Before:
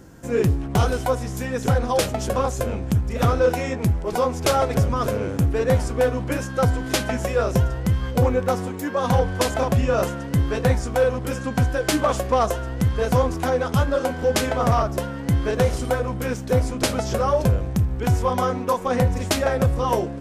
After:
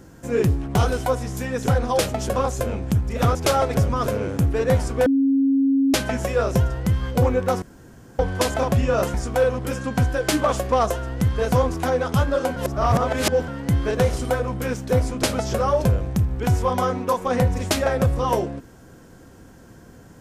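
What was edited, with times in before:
0:03.35–0:04.35: remove
0:06.06–0:06.94: beep over 272 Hz −15 dBFS
0:08.62–0:09.19: fill with room tone
0:10.14–0:10.74: remove
0:14.16–0:15.08: reverse

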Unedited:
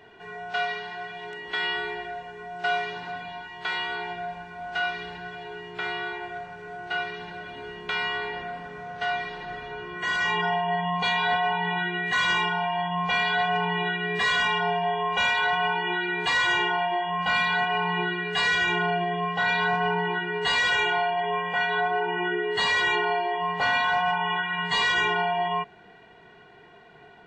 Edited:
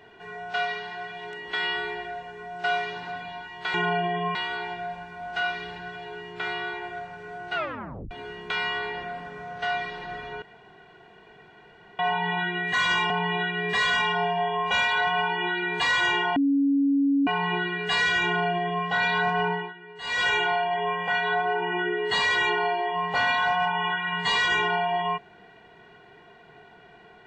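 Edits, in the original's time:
0:06.94: tape stop 0.56 s
0:09.81–0:11.38: fill with room tone
0:12.49–0:13.56: remove
0:16.82–0:17.73: beep over 279 Hz −18.5 dBFS
0:18.71–0:19.32: duplicate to 0:03.74
0:19.95–0:20.71: duck −16 dB, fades 0.24 s

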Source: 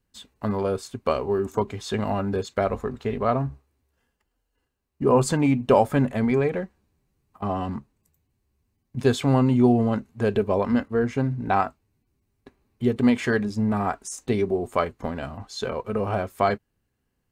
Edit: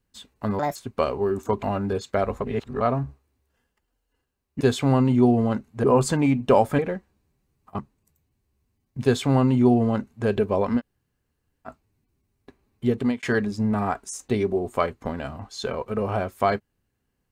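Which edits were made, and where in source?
0:00.59–0:00.84: play speed 150%
0:01.71–0:02.06: remove
0:02.84–0:03.24: reverse
0:05.99–0:06.46: remove
0:07.46–0:07.77: remove
0:09.02–0:10.25: duplicate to 0:05.04
0:10.77–0:11.66: fill with room tone, crossfade 0.06 s
0:12.86–0:13.21: fade out equal-power

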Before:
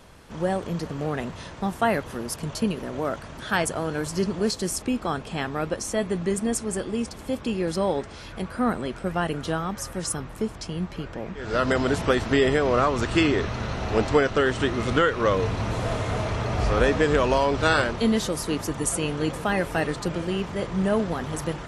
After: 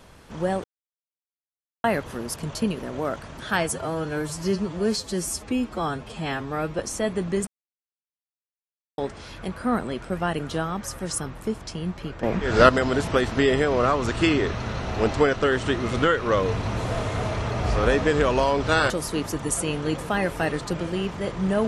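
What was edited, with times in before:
0:00.64–0:01.84: silence
0:03.61–0:05.73: time-stretch 1.5×
0:06.41–0:07.92: silence
0:11.17–0:11.63: clip gain +9.5 dB
0:17.84–0:18.25: remove

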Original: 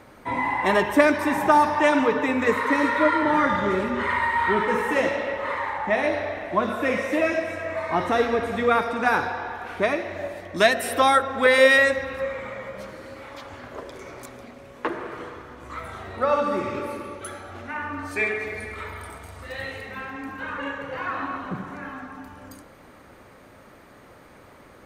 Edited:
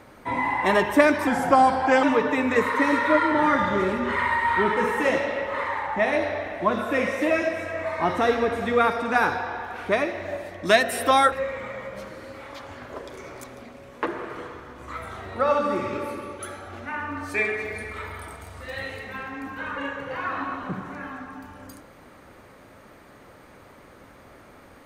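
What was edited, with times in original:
0:01.27–0:01.94: play speed 88%
0:11.23–0:12.14: remove

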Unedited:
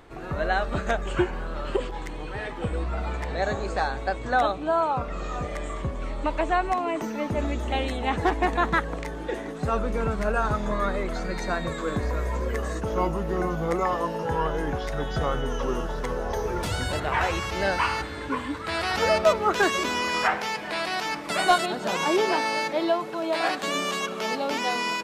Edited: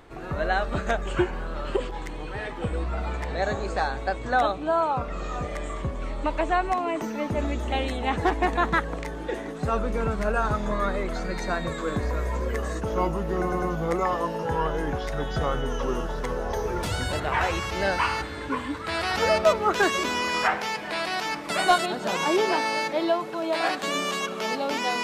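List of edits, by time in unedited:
0:13.42: stutter 0.10 s, 3 plays

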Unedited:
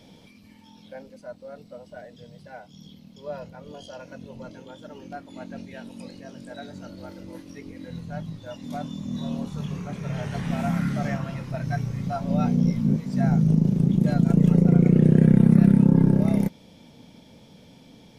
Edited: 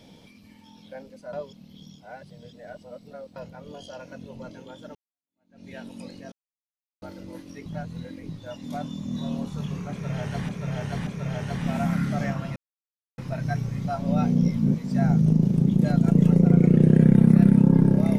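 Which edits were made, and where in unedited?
0:01.33–0:03.36: reverse
0:04.95–0:05.68: fade in exponential
0:06.32–0:07.02: silence
0:07.66–0:08.29: reverse
0:09.91–0:10.49: repeat, 3 plays
0:11.40: splice in silence 0.62 s

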